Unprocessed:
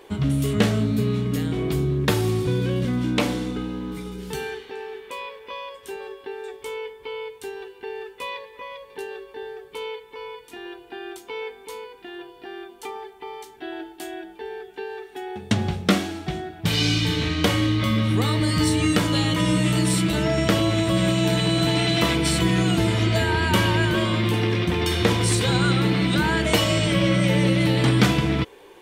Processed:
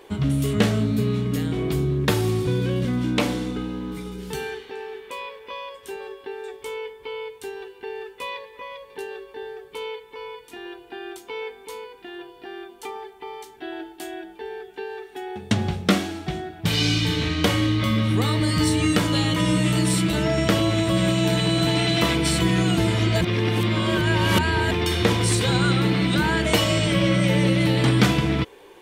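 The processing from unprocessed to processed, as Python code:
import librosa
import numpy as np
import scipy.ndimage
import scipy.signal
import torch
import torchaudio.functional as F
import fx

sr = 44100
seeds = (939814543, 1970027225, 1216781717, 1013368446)

y = fx.edit(x, sr, fx.reverse_span(start_s=23.21, length_s=1.5), tone=tone)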